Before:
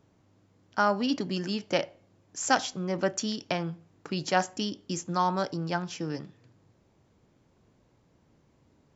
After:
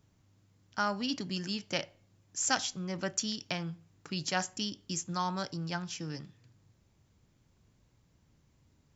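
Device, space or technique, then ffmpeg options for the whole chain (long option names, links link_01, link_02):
smiley-face EQ: -af "lowshelf=frequency=150:gain=5,equalizer=frequency=470:width_type=o:width=2.9:gain=-9,highshelf=frequency=6100:gain=5.5,volume=-1.5dB"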